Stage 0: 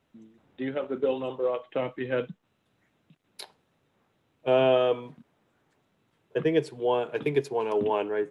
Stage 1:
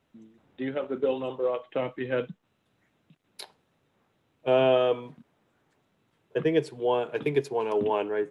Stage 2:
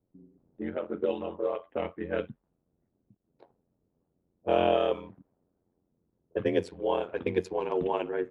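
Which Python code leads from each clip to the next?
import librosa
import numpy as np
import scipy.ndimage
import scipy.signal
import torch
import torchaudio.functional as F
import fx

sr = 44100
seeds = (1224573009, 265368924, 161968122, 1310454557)

y1 = x
y2 = fx.env_lowpass(y1, sr, base_hz=430.0, full_db=-20.0)
y2 = y2 * np.sin(2.0 * np.pi * 44.0 * np.arange(len(y2)) / sr)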